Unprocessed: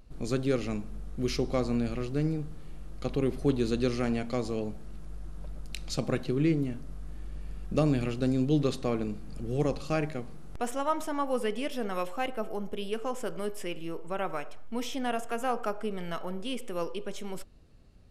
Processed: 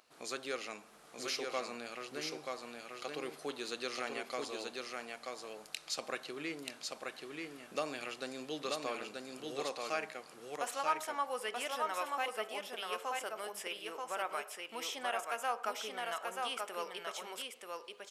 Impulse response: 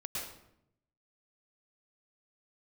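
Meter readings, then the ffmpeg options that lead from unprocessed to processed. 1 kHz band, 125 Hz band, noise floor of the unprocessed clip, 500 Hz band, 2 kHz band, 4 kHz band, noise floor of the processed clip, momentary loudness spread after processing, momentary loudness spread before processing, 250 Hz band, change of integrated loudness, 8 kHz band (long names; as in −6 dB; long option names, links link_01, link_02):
−2.0 dB, −29.0 dB, −41 dBFS, −9.0 dB, +0.5 dB, +1.0 dB, −58 dBFS, 9 LU, 15 LU, −18.0 dB, −8.0 dB, +1.0 dB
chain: -filter_complex "[0:a]highpass=820,asplit=2[link_01][link_02];[link_02]acompressor=threshold=-50dB:ratio=6,volume=-0.5dB[link_03];[link_01][link_03]amix=inputs=2:normalize=0,aecho=1:1:933:0.668,volume=-2.5dB"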